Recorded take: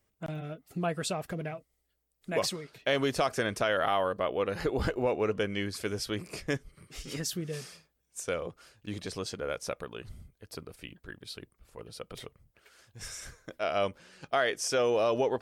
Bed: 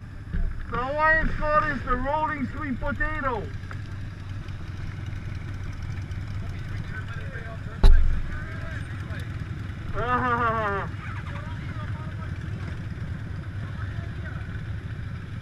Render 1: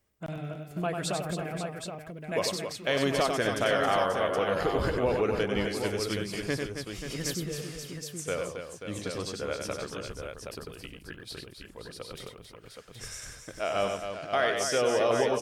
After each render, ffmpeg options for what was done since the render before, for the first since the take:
-af "aecho=1:1:95|271|534|772:0.531|0.398|0.335|0.473"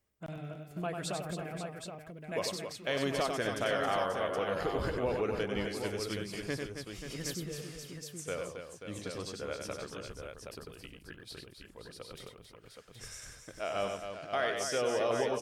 -af "volume=0.531"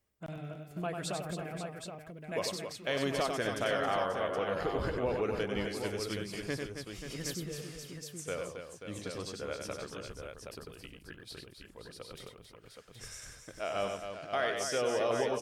-filter_complex "[0:a]asettb=1/sr,asplit=3[s0][s1][s2];[s0]atrim=end=3.804[s3];[s1]atrim=start=3.8:end=5.22,asetpts=PTS-STARTPTS,afade=t=in:d=0.004:c=qsin,afade=t=out:st=1.416:d=0.004:c=qsin,highshelf=f=5800:g=-5.5[s4];[s2]atrim=start=5.216[s5];[s3][s4]acrossfade=d=0.004:c1=hsin:c2=qsin[s6];[s6][s5]acrossfade=d=0.004:c1=qsin:c2=hsin"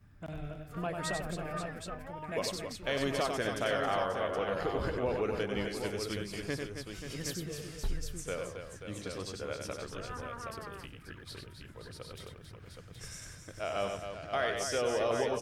-filter_complex "[1:a]volume=0.1[s0];[0:a][s0]amix=inputs=2:normalize=0"

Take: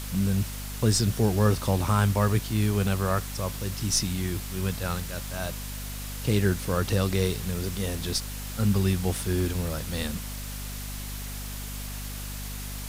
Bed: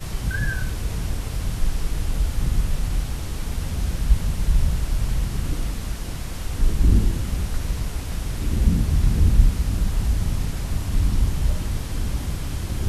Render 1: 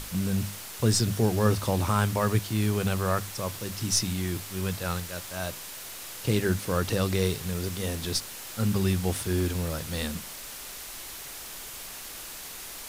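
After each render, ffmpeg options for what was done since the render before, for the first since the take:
-af "bandreject=f=50:t=h:w=6,bandreject=f=100:t=h:w=6,bandreject=f=150:t=h:w=6,bandreject=f=200:t=h:w=6,bandreject=f=250:t=h:w=6"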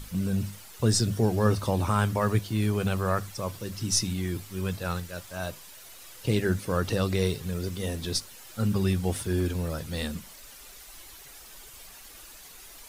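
-af "afftdn=nr=10:nf=-41"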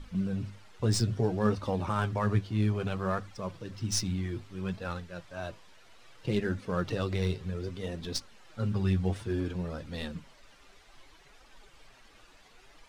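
-af "flanger=delay=3.3:depth=7.7:regen=39:speed=0.61:shape=triangular,adynamicsmooth=sensitivity=6.5:basefreq=3500"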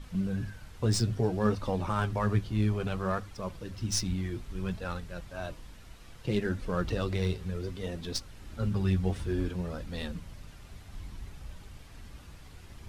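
-filter_complex "[1:a]volume=0.0708[s0];[0:a][s0]amix=inputs=2:normalize=0"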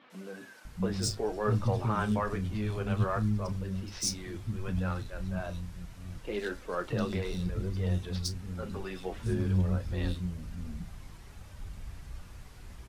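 -filter_complex "[0:a]asplit=2[s0][s1];[s1]adelay=33,volume=0.224[s2];[s0][s2]amix=inputs=2:normalize=0,acrossover=split=280|3400[s3][s4][s5];[s5]adelay=100[s6];[s3]adelay=650[s7];[s7][s4][s6]amix=inputs=3:normalize=0"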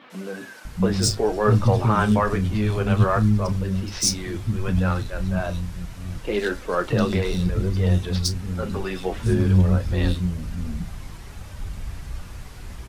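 -af "volume=3.35"

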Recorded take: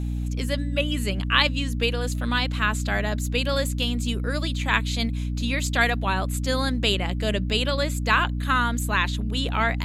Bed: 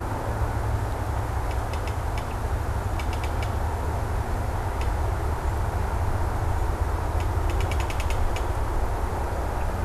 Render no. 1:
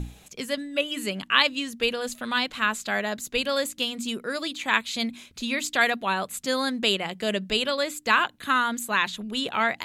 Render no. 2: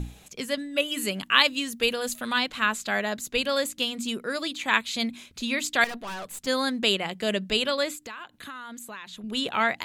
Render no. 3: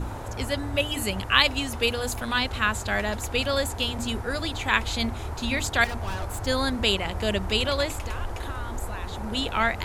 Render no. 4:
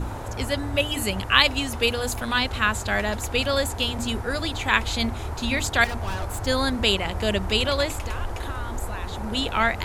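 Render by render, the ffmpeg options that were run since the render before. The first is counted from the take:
-af "bandreject=f=60:t=h:w=6,bandreject=f=120:t=h:w=6,bandreject=f=180:t=h:w=6,bandreject=f=240:t=h:w=6,bandreject=f=300:t=h:w=6"
-filter_complex "[0:a]asettb=1/sr,asplit=3[s0][s1][s2];[s0]atrim=end=0.774[s3];[s1]atrim=start=0.77:end=2.33,asetpts=PTS-STARTPTS,afade=t=in:d=0.004:c=qsin,afade=t=out:st=1.556:d=0.004:c=qsin,highshelf=f=9000:g=10.5[s4];[s2]atrim=start=2.326[s5];[s3][s4]acrossfade=d=0.004:c1=hsin:c2=qsin[s6];[s6][s5]acrossfade=d=0.004:c1=qsin:c2=hsin,asettb=1/sr,asplit=3[s7][s8][s9];[s7]atrim=end=5.844[s10];[s8]atrim=start=5.84:end=6.47,asetpts=PTS-STARTPTS,afade=t=in:d=0.004:c=qsin,afade=t=out:st=0.626:d=0.004:c=qsin,aeval=exprs='(tanh(44.7*val(0)+0.4)-tanh(0.4))/44.7':c=same[s11];[s9]atrim=start=6.466[s12];[s10][s11]acrossfade=d=0.004:c1=hsin:c2=qsin[s13];[s13][s12]acrossfade=d=0.004:c1=qsin:c2=hsin,asettb=1/sr,asplit=3[s14][s15][s16];[s14]atrim=end=7.954[s17];[s15]atrim=start=7.95:end=9.24,asetpts=PTS-STARTPTS,afade=t=in:d=0.004:c=qsin,afade=t=out:st=1.286:d=0.004:c=qsin,acompressor=threshold=0.0126:ratio=5:attack=3.2:release=140:knee=1:detection=peak[s18];[s16]atrim=start=9.236[s19];[s17][s18]acrossfade=d=0.004:c1=hsin:c2=qsin[s20];[s20][s19]acrossfade=d=0.004:c1=qsin:c2=hsin"
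-filter_complex "[1:a]volume=0.447[s0];[0:a][s0]amix=inputs=2:normalize=0"
-af "volume=1.26"

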